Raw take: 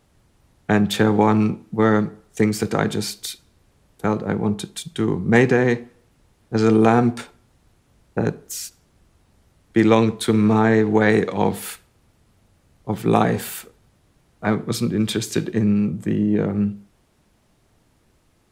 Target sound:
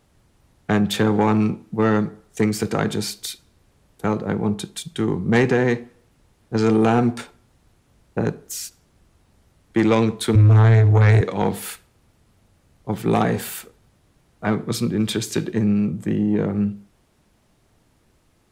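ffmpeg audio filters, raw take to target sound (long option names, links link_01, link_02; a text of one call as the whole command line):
ffmpeg -i in.wav -filter_complex "[0:a]asettb=1/sr,asplit=3[link_01][link_02][link_03];[link_01]atrim=end=10.354[link_04];[link_02]atrim=start=10.35:end=11.21,asetpts=PTS-STARTPTS,afade=type=in:duration=0.004:curve=qsin,afade=type=out:start_time=0.856:duration=0.004:curve=qsin,lowshelf=frequency=140:width_type=q:width=3:gain=13[link_05];[link_03]atrim=start=11.206[link_06];[link_04][link_05]acrossfade=duration=0.004:curve1=hsin:curve2=qsin[link_07];[link_07][link_06]acrossfade=duration=0.004:curve1=qsin:curve2=hsin,asoftclip=type=tanh:threshold=-8.5dB" out.wav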